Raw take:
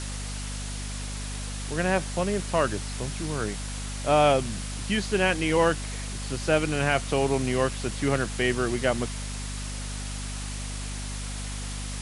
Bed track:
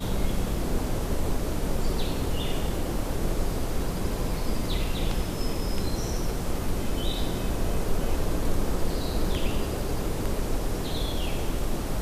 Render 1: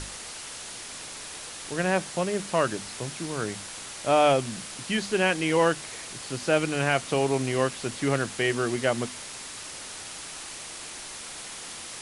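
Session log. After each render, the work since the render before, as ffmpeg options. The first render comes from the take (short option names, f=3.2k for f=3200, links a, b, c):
-af "bandreject=f=50:t=h:w=6,bandreject=f=100:t=h:w=6,bandreject=f=150:t=h:w=6,bandreject=f=200:t=h:w=6,bandreject=f=250:t=h:w=6"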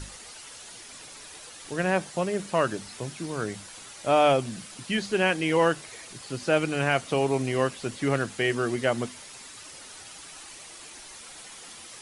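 -af "afftdn=nr=8:nf=-40"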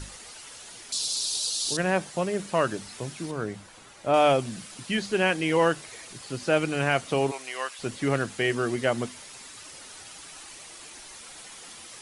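-filter_complex "[0:a]asettb=1/sr,asplit=3[a][b][c];[a]atrim=end=0.924[d];[b]atrim=start=0.92:end=1.77,asetpts=PTS-STARTPTS,afade=t=in:d=0.004:c=qsin,afade=t=out:st=0.846:d=0.004:c=qsin,highshelf=f=2.9k:t=q:w=3:g=13.5[e];[c]atrim=start=1.766[f];[d][e]acrossfade=d=0.004:c1=hsin:c2=qsin[g];[g][f]acrossfade=d=0.004:c1=qsin:c2=hsin,asettb=1/sr,asplit=3[h][i][j];[h]atrim=end=3.314[k];[i]atrim=start=3.31:end=4.14,asetpts=PTS-STARTPTS,afade=t=in:d=0.004:c=qsin,afade=t=out:st=0.826:d=0.004:c=qsin,highshelf=f=2.7k:g=-10[l];[j]atrim=start=4.136[m];[k][l]acrossfade=d=0.004:c1=hsin:c2=qsin[n];[n][m]acrossfade=d=0.004:c1=qsin:c2=hsin,asplit=3[o][p][q];[o]afade=t=out:st=7.3:d=0.02[r];[p]highpass=960,afade=t=in:st=7.3:d=0.02,afade=t=out:st=7.78:d=0.02[s];[q]afade=t=in:st=7.78:d=0.02[t];[r][s][t]amix=inputs=3:normalize=0"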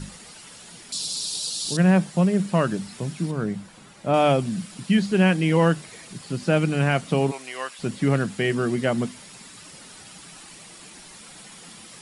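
-af "equalizer=f=180:w=1.6:g=14.5,bandreject=f=6.2k:w=16"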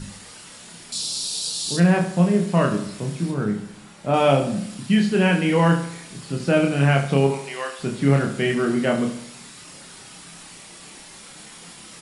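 -filter_complex "[0:a]asplit=2[a][b];[b]adelay=29,volume=-3.5dB[c];[a][c]amix=inputs=2:normalize=0,asplit=2[d][e];[e]adelay=71,lowpass=f=4.4k:p=1,volume=-10dB,asplit=2[f][g];[g]adelay=71,lowpass=f=4.4k:p=1,volume=0.51,asplit=2[h][i];[i]adelay=71,lowpass=f=4.4k:p=1,volume=0.51,asplit=2[j][k];[k]adelay=71,lowpass=f=4.4k:p=1,volume=0.51,asplit=2[l][m];[m]adelay=71,lowpass=f=4.4k:p=1,volume=0.51,asplit=2[n][o];[o]adelay=71,lowpass=f=4.4k:p=1,volume=0.51[p];[f][h][j][l][n][p]amix=inputs=6:normalize=0[q];[d][q]amix=inputs=2:normalize=0"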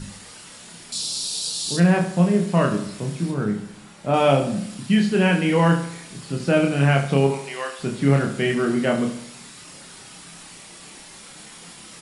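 -af anull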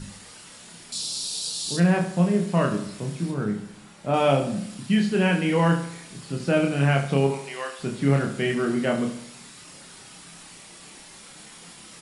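-af "volume=-3dB"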